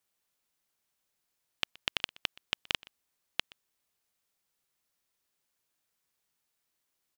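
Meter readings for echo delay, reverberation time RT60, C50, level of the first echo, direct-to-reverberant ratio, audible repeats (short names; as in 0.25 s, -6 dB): 0.123 s, none, none, -23.5 dB, none, 1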